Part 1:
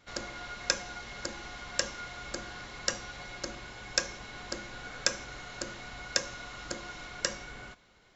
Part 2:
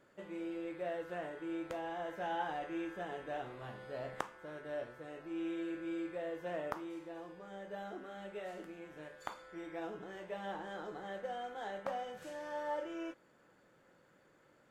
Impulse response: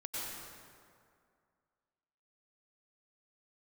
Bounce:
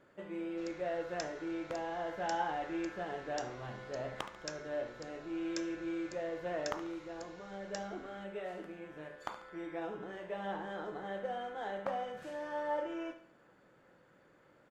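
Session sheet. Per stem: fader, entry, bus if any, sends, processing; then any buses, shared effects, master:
-16.0 dB, 0.50 s, no send, no echo send, dry
+2.5 dB, 0.00 s, no send, echo send -12 dB, high shelf 5800 Hz -10.5 dB; wavefolder -23 dBFS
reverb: off
echo: feedback echo 71 ms, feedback 42%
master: dry

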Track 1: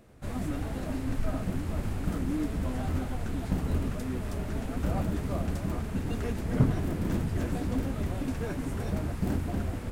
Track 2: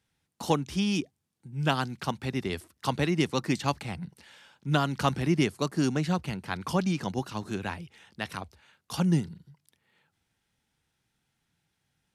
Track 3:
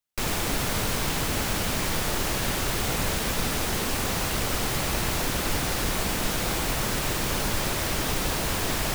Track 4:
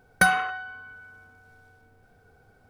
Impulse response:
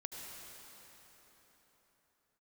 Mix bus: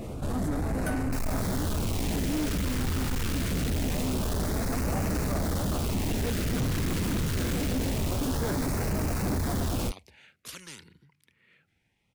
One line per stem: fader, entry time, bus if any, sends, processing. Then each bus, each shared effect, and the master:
+1.0 dB, 0.00 s, no send, fast leveller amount 50%
-14.0 dB, 1.55 s, no send, bell 2300 Hz +10 dB 0.68 oct; spectral compressor 4:1
-4.5 dB, 0.95 s, no send, dry
-15.5 dB, 0.65 s, no send, high shelf 4300 Hz +9.5 dB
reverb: off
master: LFO notch sine 0.25 Hz 640–3400 Hz; soft clip -24.5 dBFS, distortion -10 dB; mismatched tape noise reduction decoder only

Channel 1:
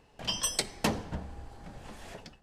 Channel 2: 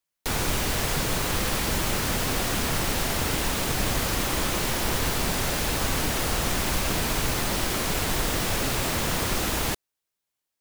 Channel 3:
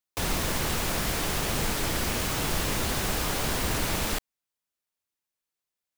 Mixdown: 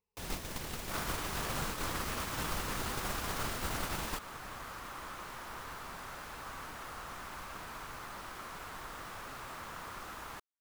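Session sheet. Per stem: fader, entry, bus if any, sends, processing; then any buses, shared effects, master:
-17.5 dB, 0.00 s, no send, ripple EQ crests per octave 0.83, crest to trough 14 dB
-9.5 dB, 0.65 s, no send, bell 1200 Hz +14.5 dB 1.4 oct
+0.5 dB, 0.00 s, no send, dry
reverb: off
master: gate -24 dBFS, range -15 dB; compressor 6:1, threshold -33 dBFS, peak gain reduction 10.5 dB

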